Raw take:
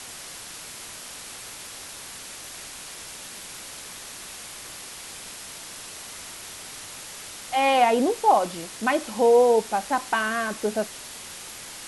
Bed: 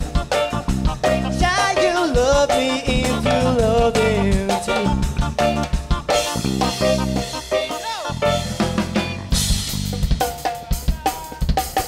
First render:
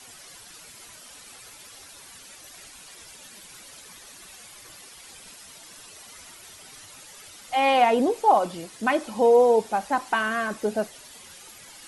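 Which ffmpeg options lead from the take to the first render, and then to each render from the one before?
-af "afftdn=nr=11:nf=-40"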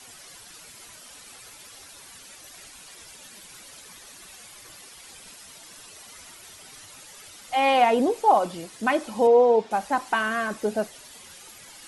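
-filter_complex "[0:a]asettb=1/sr,asplit=3[a][b][c];[a]atrim=end=9.274[d];[b]atrim=start=9.27:end=9.71,asetpts=PTS-STARTPTS,afade=t=in:d=0.004:c=qsin,afade=t=out:st=0.436:d=0.004:c=qsin,highpass=140,lowpass=4k[e];[c]atrim=start=9.706[f];[d][e]acrossfade=d=0.004:c1=hsin:c2=qsin[g];[g][f]acrossfade=d=0.004:c1=qsin:c2=hsin"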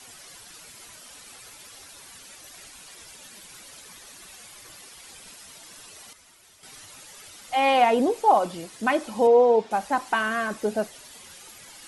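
-filter_complex "[0:a]asplit=3[a][b][c];[a]atrim=end=6.132[d];[b]atrim=start=6.128:end=6.632,asetpts=PTS-STARTPTS,volume=-9dB[e];[c]atrim=start=6.628[f];[d][e]acrossfade=d=0.004:c1=hsin:c2=hsin[g];[g][f]acrossfade=d=0.004:c1=hsin:c2=hsin"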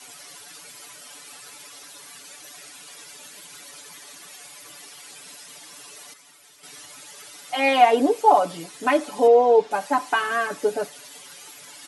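-af "highpass=180,aecho=1:1:6.9:0.93"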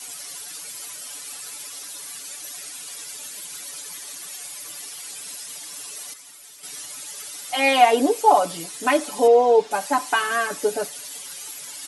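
-af "highshelf=f=4.4k:g=11"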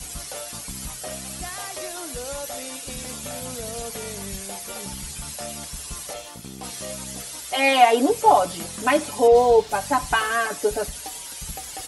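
-filter_complex "[1:a]volume=-18.5dB[a];[0:a][a]amix=inputs=2:normalize=0"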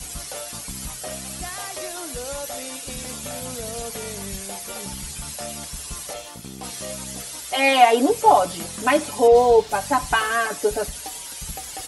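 -af "volume=1dB"

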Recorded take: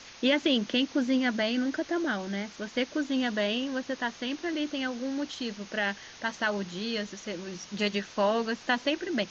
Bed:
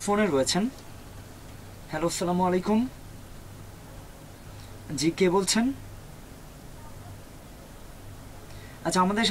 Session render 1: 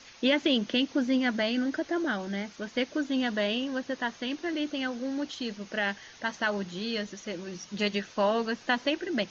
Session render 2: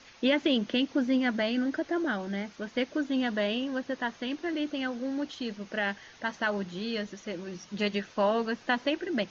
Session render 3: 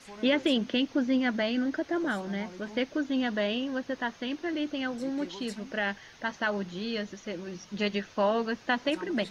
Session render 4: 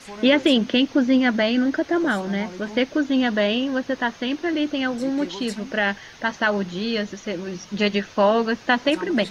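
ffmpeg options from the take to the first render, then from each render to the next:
-af "afftdn=nr=6:nf=-49"
-af "highshelf=f=4.4k:g=-8"
-filter_complex "[1:a]volume=-22dB[a];[0:a][a]amix=inputs=2:normalize=0"
-af "volume=8.5dB"

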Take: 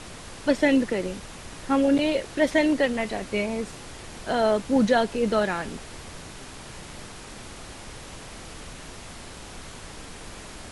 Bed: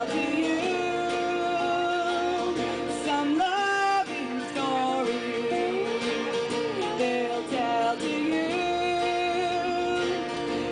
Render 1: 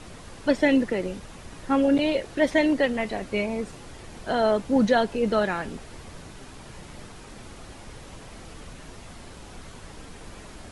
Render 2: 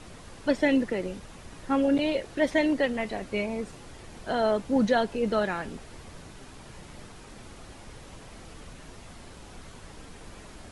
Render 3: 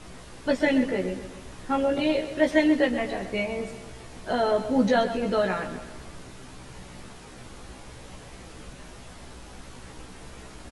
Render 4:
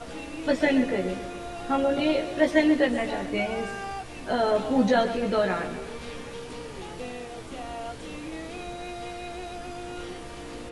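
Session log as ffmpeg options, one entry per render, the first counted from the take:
-af "afftdn=nr=6:nf=-42"
-af "volume=-3dB"
-filter_complex "[0:a]asplit=2[a][b];[b]adelay=16,volume=-3dB[c];[a][c]amix=inputs=2:normalize=0,aecho=1:1:129|258|387|516|645:0.266|0.133|0.0665|0.0333|0.0166"
-filter_complex "[1:a]volume=-11.5dB[a];[0:a][a]amix=inputs=2:normalize=0"

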